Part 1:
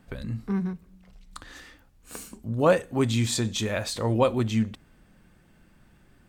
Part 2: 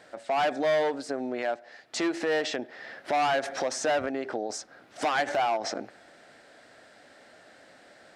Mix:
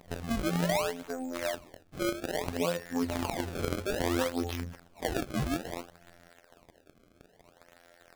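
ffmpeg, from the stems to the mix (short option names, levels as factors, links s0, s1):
-filter_complex "[0:a]volume=1.06[s0];[1:a]asubboost=boost=10.5:cutoff=50,volume=0.891[s1];[s0][s1]amix=inputs=2:normalize=0,afftfilt=real='hypot(re,im)*cos(PI*b)':imag='0':win_size=2048:overlap=0.75,acrusher=samples=27:mix=1:aa=0.000001:lfo=1:lforange=43.2:lforate=0.6,alimiter=limit=0.133:level=0:latency=1:release=193"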